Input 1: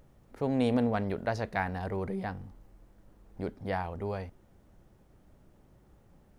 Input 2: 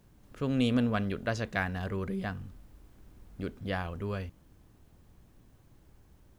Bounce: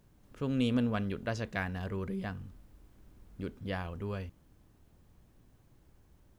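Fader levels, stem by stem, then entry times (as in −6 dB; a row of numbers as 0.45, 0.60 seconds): −17.5, −3.5 decibels; 0.00, 0.00 seconds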